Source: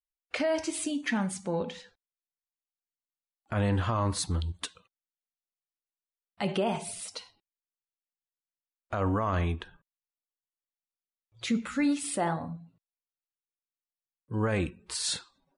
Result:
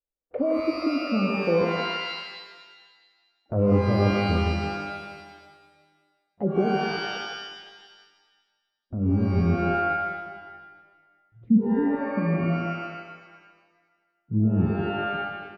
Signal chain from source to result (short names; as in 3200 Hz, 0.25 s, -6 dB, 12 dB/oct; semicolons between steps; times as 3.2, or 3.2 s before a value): treble ducked by the level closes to 540 Hz, closed at -26.5 dBFS; on a send: echo 0.16 s -6.5 dB; on the sum: low-pass sweep 520 Hz -> 210 Hz, 5.65–9.48; shimmer reverb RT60 1.4 s, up +12 st, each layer -2 dB, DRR 6 dB; gain +3 dB